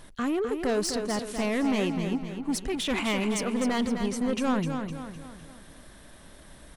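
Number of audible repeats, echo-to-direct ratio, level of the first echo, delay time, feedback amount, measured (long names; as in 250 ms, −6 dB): 5, −6.0 dB, −7.0 dB, 255 ms, 45%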